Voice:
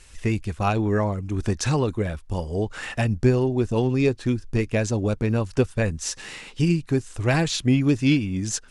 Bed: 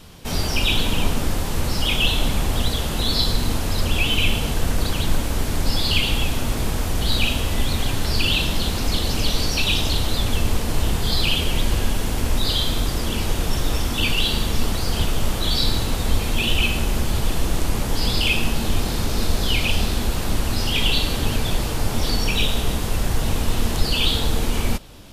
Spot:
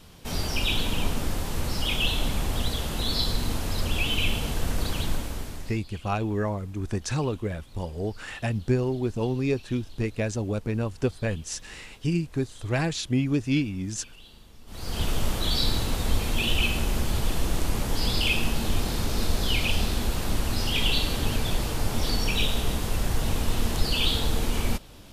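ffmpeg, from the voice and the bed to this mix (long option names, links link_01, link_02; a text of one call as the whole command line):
ffmpeg -i stem1.wav -i stem2.wav -filter_complex "[0:a]adelay=5450,volume=-5dB[link_01];[1:a]volume=19dB,afade=type=out:start_time=5:duration=0.8:silence=0.0668344,afade=type=in:start_time=14.66:duration=0.44:silence=0.0562341[link_02];[link_01][link_02]amix=inputs=2:normalize=0" out.wav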